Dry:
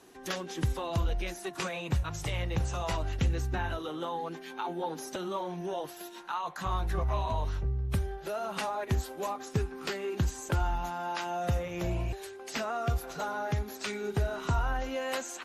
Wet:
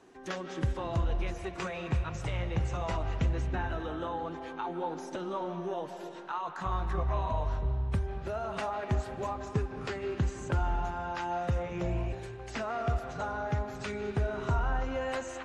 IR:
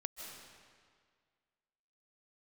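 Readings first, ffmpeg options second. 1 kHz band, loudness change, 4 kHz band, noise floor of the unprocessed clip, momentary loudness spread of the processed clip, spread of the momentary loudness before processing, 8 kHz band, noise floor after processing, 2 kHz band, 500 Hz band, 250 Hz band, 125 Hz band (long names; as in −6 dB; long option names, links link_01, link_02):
−0.5 dB, −0.5 dB, −6.0 dB, −46 dBFS, 6 LU, 6 LU, −8.5 dB, −43 dBFS, −1.5 dB, 0.0 dB, 0.0 dB, 0.0 dB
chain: -filter_complex "[0:a]lowpass=frequency=8600:width=0.5412,lowpass=frequency=8600:width=1.3066,asplit=2[link_01][link_02];[1:a]atrim=start_sample=2205,lowpass=2800[link_03];[link_02][link_03]afir=irnorm=-1:irlink=0,volume=3dB[link_04];[link_01][link_04]amix=inputs=2:normalize=0,volume=-6.5dB"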